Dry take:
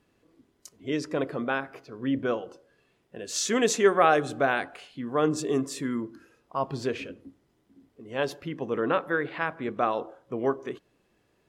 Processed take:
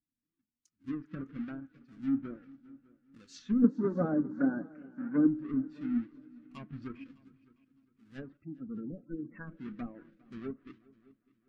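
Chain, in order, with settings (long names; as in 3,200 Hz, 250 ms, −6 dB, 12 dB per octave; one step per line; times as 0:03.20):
each half-wave held at its own peak
treble cut that deepens with the level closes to 710 Hz, closed at −18.5 dBFS
0:08.37–0:09.47: gate on every frequency bin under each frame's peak −15 dB strong
flat-topped bell 610 Hz −12 dB
flanger 1.3 Hz, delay 2.9 ms, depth 2.5 ms, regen +57%
0:03.64–0:05.27: loudspeaker in its box 140–2,100 Hz, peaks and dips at 180 Hz +7 dB, 300 Hz +9 dB, 550 Hz +7 dB, 910 Hz +9 dB, 1,500 Hz +9 dB
echo machine with several playback heads 202 ms, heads second and third, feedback 46%, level −16 dB
every bin expanded away from the loudest bin 1.5 to 1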